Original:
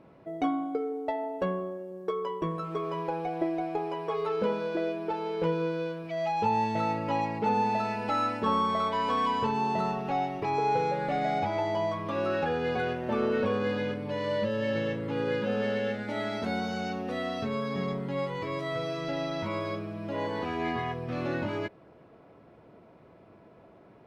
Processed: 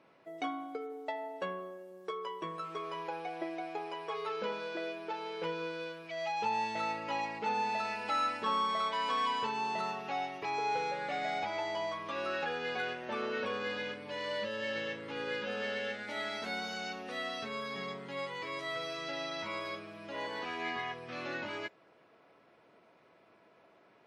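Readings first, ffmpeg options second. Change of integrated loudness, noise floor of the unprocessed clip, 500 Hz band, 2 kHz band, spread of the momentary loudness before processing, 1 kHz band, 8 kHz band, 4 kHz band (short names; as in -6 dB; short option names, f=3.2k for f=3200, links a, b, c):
-6.0 dB, -55 dBFS, -8.5 dB, -0.5 dB, 6 LU, -5.5 dB, n/a, +1.0 dB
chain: -filter_complex "[0:a]highpass=f=490:p=1,acrossover=split=1400[a][b];[b]acontrast=87[c];[a][c]amix=inputs=2:normalize=0,volume=-6dB" -ar 48000 -c:a wmav2 -b:a 64k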